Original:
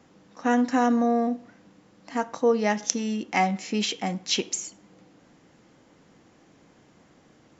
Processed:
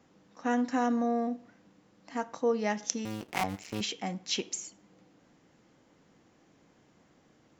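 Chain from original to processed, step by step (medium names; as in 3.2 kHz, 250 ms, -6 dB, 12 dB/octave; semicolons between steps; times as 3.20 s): 3.05–3.81 s: cycle switcher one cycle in 2, muted; trim -6.5 dB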